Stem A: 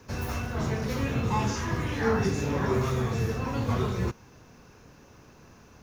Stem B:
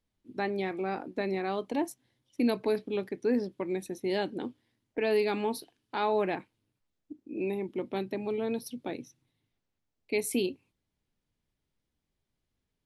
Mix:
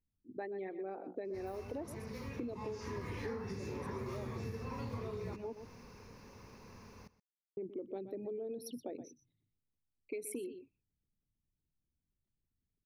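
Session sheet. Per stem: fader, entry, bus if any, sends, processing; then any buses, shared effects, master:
2.56 s -15.5 dB -> 3.11 s -3 dB, 1.25 s, no send, echo send -18.5 dB, rippled EQ curve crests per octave 0.89, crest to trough 7 dB
-4.0 dB, 0.00 s, muted 5.53–7.57 s, no send, echo send -14.5 dB, resonances exaggerated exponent 2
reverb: none
echo: delay 123 ms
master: compression 12:1, threshold -38 dBFS, peak gain reduction 18.5 dB

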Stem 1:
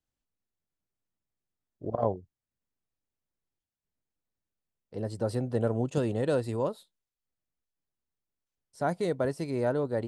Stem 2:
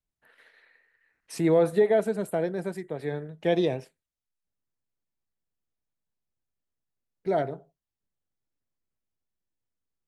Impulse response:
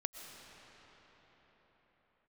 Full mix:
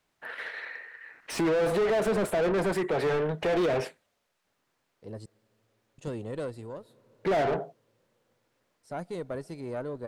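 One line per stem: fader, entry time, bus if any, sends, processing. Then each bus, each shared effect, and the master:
-5.5 dB, 0.10 s, muted 5.26–5.98 s, send -19.5 dB, valve stage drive 17 dB, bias 0.4; auto duck -11 dB, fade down 0.85 s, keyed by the second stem
+2.5 dB, 0.00 s, no send, peak limiter -22 dBFS, peak gain reduction 10 dB; overdrive pedal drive 29 dB, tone 1.7 kHz, clips at -22 dBFS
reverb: on, pre-delay 80 ms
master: none

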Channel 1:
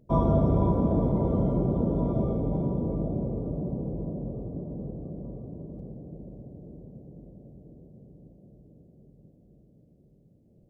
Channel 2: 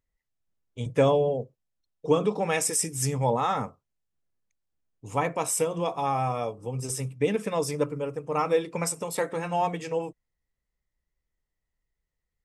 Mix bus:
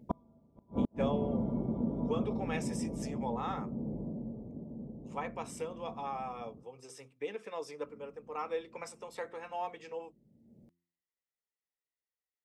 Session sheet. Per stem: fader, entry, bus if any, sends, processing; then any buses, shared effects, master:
+1.0 dB, 0.00 s, muted 6.63–7.83 s, no send, peaking EQ 77 Hz -3.5 dB 0.84 oct; small resonant body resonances 230/860/2200 Hz, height 11 dB, ringing for 85 ms; auto duck -12 dB, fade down 1.10 s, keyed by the second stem
-11.0 dB, 0.00 s, no send, three-band isolator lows -20 dB, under 320 Hz, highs -16 dB, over 5.7 kHz; band-stop 610 Hz, Q 12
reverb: none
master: high-pass 46 Hz 12 dB/octave; de-hum 86.4 Hz, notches 4; inverted gate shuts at -18 dBFS, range -41 dB

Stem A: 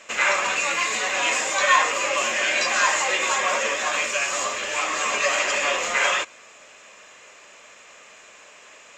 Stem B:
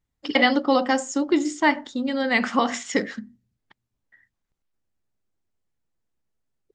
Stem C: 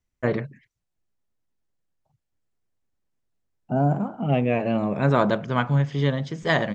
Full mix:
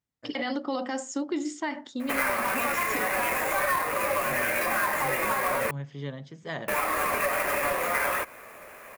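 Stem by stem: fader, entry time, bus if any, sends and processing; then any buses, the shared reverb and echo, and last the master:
-1.0 dB, 2.00 s, muted 5.71–6.68 s, no bus, no send, square wave that keeps the level; high-order bell 4.6 kHz -12.5 dB
-5.5 dB, 0.00 s, bus A, no send, none
-12.5 dB, 0.00 s, bus A, no send, auto duck -16 dB, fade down 0.35 s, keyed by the second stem
bus A: 0.0 dB, high-pass 110 Hz; peak limiter -19.5 dBFS, peak gain reduction 10 dB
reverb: none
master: compression 6:1, threshold -24 dBFS, peak gain reduction 12.5 dB

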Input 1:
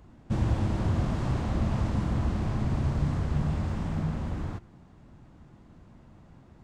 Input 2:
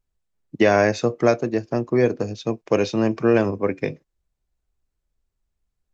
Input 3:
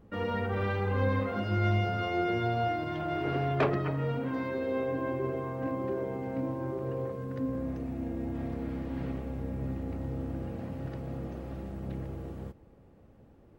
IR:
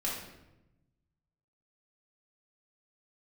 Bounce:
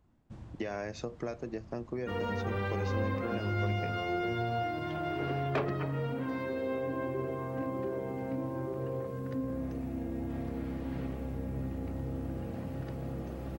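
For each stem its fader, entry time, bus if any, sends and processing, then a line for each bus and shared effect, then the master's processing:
-15.5 dB, 0.00 s, no send, auto duck -8 dB, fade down 0.40 s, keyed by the second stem
-11.0 dB, 0.00 s, no send, compression, threshold -19 dBFS, peak gain reduction 8 dB
+1.0 dB, 1.95 s, no send, treble shelf 5.8 kHz +6.5 dB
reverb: none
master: compression 1.5:1, threshold -37 dBFS, peak gain reduction 6 dB

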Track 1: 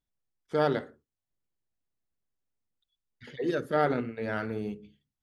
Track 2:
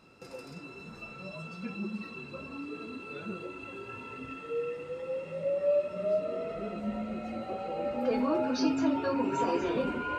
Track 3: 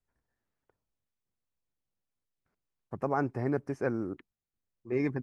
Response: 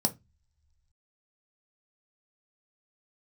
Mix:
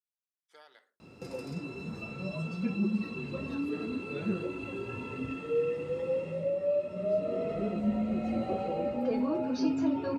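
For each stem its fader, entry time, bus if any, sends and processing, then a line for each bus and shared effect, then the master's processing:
-17.0 dB, 0.00 s, no send, high-pass 1.2 kHz 12 dB/octave; treble shelf 5.6 kHz +5 dB; compression 6:1, threshold -38 dBFS, peak gain reduction 10.5 dB
-2.5 dB, 1.00 s, no send, high-pass 66 Hz; bass shelf 400 Hz +9 dB
mute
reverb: none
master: peaking EQ 1.4 kHz -4.5 dB 0.45 oct; gain riding within 4 dB 0.5 s

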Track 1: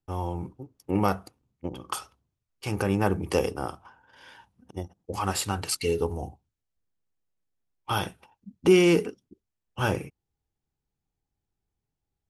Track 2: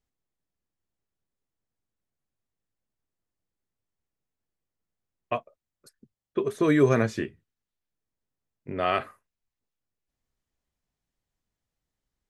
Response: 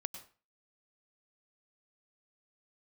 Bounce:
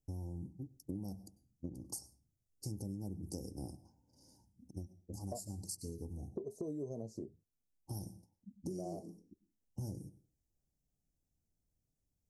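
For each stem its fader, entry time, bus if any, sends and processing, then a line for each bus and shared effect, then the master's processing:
-3.0 dB, 0.00 s, send -11.5 dB, high-order bell 650 Hz -13.5 dB; auto duck -10 dB, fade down 0.85 s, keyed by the second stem
-5.0 dB, 0.00 s, no send, none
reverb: on, RT60 0.35 s, pre-delay 92 ms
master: inverse Chebyshev band-stop 1.2–3.5 kHz, stop band 40 dB; compression 10:1, threshold -39 dBFS, peak gain reduction 19.5 dB

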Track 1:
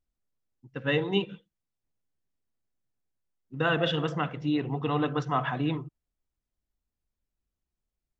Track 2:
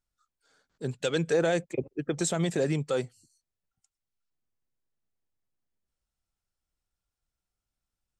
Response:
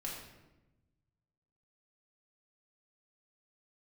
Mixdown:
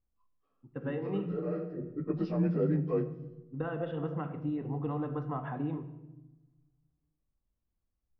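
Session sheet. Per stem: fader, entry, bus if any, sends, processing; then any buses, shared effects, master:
-4.5 dB, 0.00 s, send -5 dB, compression, threshold -28 dBFS, peak gain reduction 7.5 dB
-3.5 dB, 0.00 s, send -7 dB, frequency axis rescaled in octaves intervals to 88%; bass shelf 200 Hz +7.5 dB; auto duck -18 dB, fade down 0.20 s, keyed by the first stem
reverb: on, RT60 1.0 s, pre-delay 4 ms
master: Bessel low-pass 900 Hz, order 2

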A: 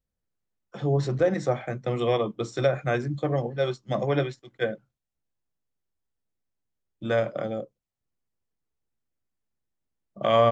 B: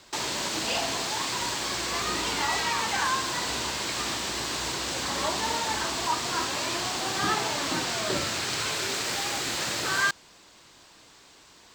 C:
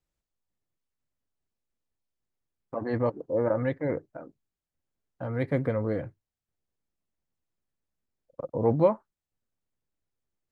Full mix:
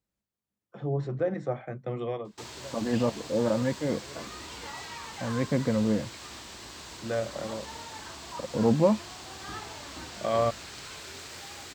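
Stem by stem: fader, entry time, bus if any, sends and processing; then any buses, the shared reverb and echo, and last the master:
-5.5 dB, 0.00 s, no send, peaking EQ 6.2 kHz -13 dB 1.9 oct; auto duck -18 dB, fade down 0.75 s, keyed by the third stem
-13.5 dB, 2.25 s, no send, octave divider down 2 oct, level +1 dB
-1.5 dB, 0.00 s, no send, peaking EQ 210 Hz +12 dB 0.36 oct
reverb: none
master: high-pass 55 Hz

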